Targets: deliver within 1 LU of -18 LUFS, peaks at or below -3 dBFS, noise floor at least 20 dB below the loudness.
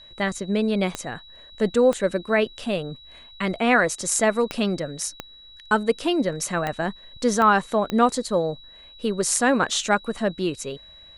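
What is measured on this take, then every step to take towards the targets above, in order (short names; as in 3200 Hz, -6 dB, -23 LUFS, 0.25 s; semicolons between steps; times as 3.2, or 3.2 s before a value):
clicks 7; steady tone 3900 Hz; tone level -45 dBFS; loudness -23.0 LUFS; peak -4.5 dBFS; loudness target -18.0 LUFS
-> de-click; notch 3900 Hz, Q 30; gain +5 dB; limiter -3 dBFS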